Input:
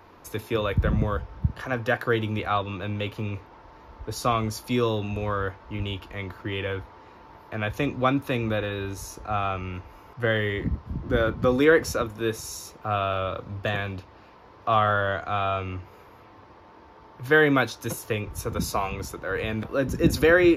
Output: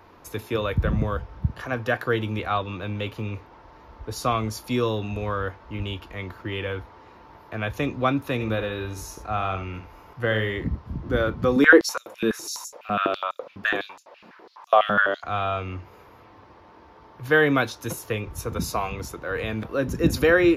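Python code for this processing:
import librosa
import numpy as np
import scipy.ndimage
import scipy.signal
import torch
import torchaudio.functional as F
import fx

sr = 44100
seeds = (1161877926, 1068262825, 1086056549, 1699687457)

y = fx.echo_single(x, sr, ms=73, db=-10.0, at=(8.39, 10.56), fade=0.02)
y = fx.filter_held_highpass(y, sr, hz=12.0, low_hz=200.0, high_hz=7200.0, at=(11.56, 15.24))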